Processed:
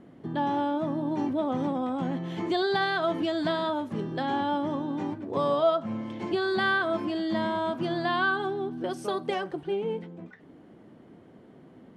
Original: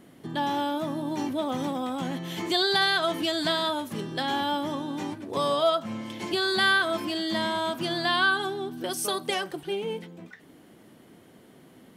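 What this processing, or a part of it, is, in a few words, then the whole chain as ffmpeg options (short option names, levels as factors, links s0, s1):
through cloth: -af "lowpass=8000,highshelf=f=2300:g=-17,volume=1.26"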